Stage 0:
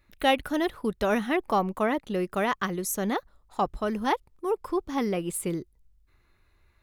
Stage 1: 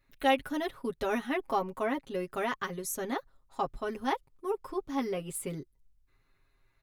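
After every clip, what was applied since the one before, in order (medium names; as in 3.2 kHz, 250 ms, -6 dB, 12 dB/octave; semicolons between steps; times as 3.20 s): comb 7.4 ms, depth 85%; trim -7.5 dB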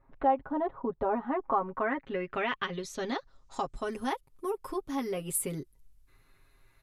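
compression 2:1, threshold -43 dBFS, peak gain reduction 12.5 dB; low-pass sweep 930 Hz -> 12 kHz, 1.19–4.23 s; trim +7 dB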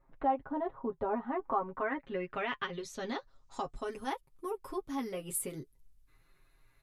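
flange 0.47 Hz, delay 5.5 ms, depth 4.1 ms, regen -43%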